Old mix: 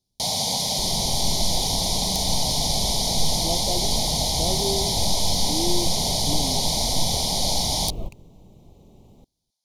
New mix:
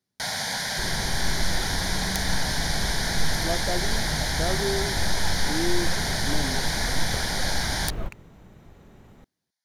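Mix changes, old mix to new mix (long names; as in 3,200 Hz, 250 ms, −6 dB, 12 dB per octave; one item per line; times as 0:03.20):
speech: add high-pass filter 150 Hz
first sound −6.5 dB
master: remove Butterworth band-reject 1,600 Hz, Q 0.76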